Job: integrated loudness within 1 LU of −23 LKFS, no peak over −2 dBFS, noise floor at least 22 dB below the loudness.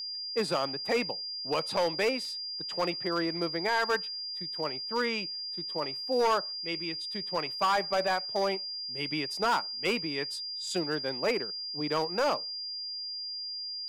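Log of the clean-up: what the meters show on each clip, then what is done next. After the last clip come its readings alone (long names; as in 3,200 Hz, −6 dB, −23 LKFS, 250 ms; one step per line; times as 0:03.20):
share of clipped samples 1.3%; peaks flattened at −21.5 dBFS; interfering tone 4,800 Hz; level of the tone −35 dBFS; integrated loudness −30.5 LKFS; sample peak −21.5 dBFS; target loudness −23.0 LKFS
→ clipped peaks rebuilt −21.5 dBFS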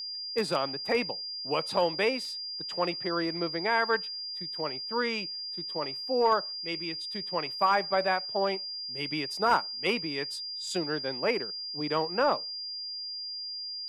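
share of clipped samples 0.0%; interfering tone 4,800 Hz; level of the tone −35 dBFS
→ notch filter 4,800 Hz, Q 30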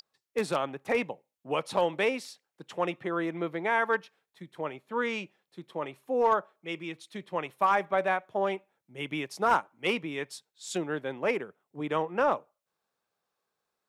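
interfering tone none found; integrated loudness −30.5 LKFS; sample peak −12.0 dBFS; target loudness −23.0 LKFS
→ level +7.5 dB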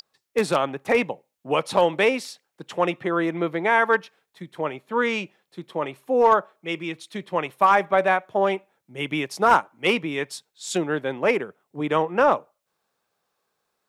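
integrated loudness −23.0 LKFS; sample peak −4.5 dBFS; background noise floor −79 dBFS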